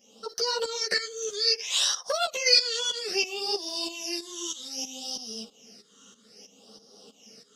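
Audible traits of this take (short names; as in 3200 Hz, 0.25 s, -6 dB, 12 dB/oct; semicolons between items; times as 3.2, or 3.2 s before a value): phasing stages 8, 0.62 Hz, lowest notch 680–2400 Hz; tremolo saw up 3.1 Hz, depth 80%; a shimmering, thickened sound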